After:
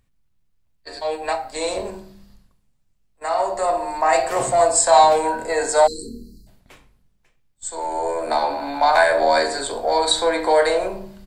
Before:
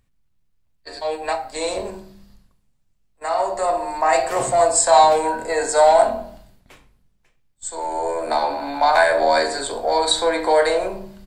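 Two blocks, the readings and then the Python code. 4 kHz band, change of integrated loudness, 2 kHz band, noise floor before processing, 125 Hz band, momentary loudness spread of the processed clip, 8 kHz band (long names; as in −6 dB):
0.0 dB, −0.5 dB, 0.0 dB, −64 dBFS, 0.0 dB, 14 LU, 0.0 dB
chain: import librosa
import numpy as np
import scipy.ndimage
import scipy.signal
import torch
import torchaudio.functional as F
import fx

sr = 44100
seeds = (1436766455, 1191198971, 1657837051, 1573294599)

y = fx.spec_erase(x, sr, start_s=5.87, length_s=0.6, low_hz=490.0, high_hz=3900.0)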